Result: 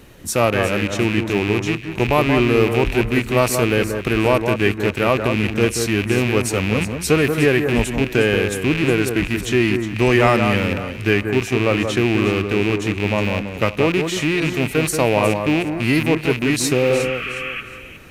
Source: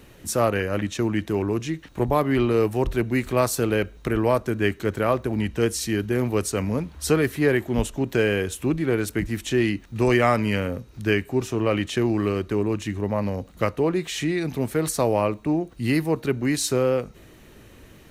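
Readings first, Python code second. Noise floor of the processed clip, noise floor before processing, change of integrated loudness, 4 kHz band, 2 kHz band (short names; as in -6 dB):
-33 dBFS, -49 dBFS, +5.5 dB, +8.5 dB, +9.0 dB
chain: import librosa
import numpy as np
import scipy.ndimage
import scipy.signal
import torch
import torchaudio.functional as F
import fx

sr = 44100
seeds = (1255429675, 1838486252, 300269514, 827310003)

y = fx.rattle_buzz(x, sr, strikes_db=-29.0, level_db=-17.0)
y = fx.spec_repair(y, sr, seeds[0], start_s=16.77, length_s=0.81, low_hz=1100.0, high_hz=3400.0, source='before')
y = fx.echo_alternate(y, sr, ms=181, hz=1800.0, feedback_pct=53, wet_db=-6.0)
y = y * librosa.db_to_amplitude(4.0)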